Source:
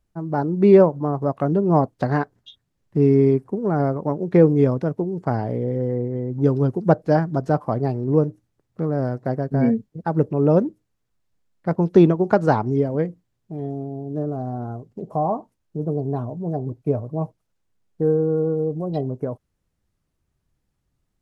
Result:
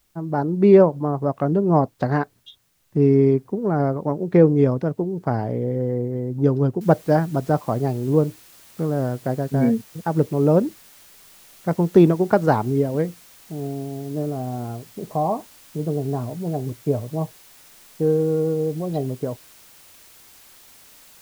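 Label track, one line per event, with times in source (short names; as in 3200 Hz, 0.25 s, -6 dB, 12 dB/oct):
6.810000	6.810000	noise floor step -67 dB -49 dB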